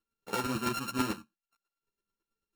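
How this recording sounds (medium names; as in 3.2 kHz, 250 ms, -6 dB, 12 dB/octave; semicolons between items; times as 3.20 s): a buzz of ramps at a fixed pitch in blocks of 32 samples; chopped level 9.1 Hz, depth 60%, duty 15%; a shimmering, thickened sound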